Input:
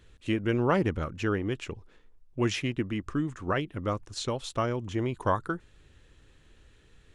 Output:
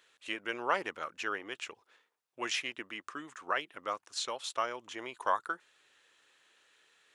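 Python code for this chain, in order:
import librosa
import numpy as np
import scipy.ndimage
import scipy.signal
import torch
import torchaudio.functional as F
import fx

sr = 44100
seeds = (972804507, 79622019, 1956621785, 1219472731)

y = scipy.signal.sosfilt(scipy.signal.butter(2, 800.0, 'highpass', fs=sr, output='sos'), x)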